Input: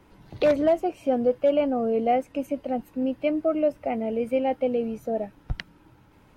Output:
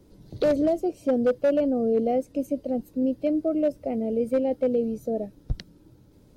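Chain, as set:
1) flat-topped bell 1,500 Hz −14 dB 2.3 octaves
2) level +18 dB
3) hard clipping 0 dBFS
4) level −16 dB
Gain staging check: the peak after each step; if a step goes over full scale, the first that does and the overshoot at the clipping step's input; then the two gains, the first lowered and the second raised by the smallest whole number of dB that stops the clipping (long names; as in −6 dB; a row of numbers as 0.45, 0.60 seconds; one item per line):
−13.0, +5.0, 0.0, −16.0 dBFS
step 2, 5.0 dB
step 2 +13 dB, step 4 −11 dB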